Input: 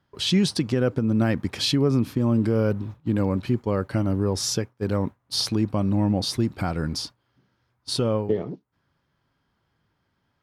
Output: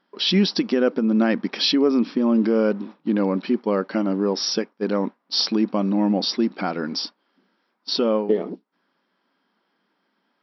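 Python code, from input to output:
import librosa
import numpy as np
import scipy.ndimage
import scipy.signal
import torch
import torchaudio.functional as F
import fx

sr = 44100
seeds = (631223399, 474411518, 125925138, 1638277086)

y = fx.brickwall_bandpass(x, sr, low_hz=180.0, high_hz=5800.0)
y = y * librosa.db_to_amplitude(4.0)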